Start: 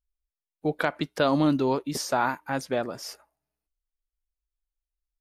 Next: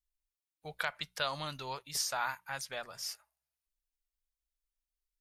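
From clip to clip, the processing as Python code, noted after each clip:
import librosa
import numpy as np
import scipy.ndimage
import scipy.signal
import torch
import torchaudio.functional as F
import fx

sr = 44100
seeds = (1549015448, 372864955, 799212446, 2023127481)

y = fx.tone_stack(x, sr, knobs='10-0-10')
y = fx.hum_notches(y, sr, base_hz=60, count=3)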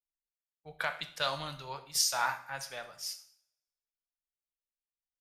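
y = fx.rev_double_slope(x, sr, seeds[0], early_s=0.71, late_s=2.7, knee_db=-25, drr_db=6.5)
y = fx.band_widen(y, sr, depth_pct=70)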